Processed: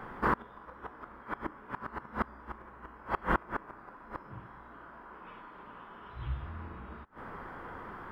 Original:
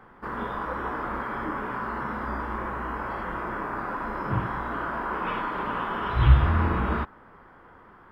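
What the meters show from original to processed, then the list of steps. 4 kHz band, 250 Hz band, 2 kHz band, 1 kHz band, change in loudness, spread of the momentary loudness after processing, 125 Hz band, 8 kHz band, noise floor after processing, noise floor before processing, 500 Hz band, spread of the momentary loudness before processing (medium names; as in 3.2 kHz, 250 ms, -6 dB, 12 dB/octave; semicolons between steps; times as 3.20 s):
-14.0 dB, -10.0 dB, -8.5 dB, -9.0 dB, -11.5 dB, 18 LU, -17.5 dB, no reading, -52 dBFS, -52 dBFS, -9.0 dB, 10 LU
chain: inverted gate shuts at -22 dBFS, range -27 dB; trim +7 dB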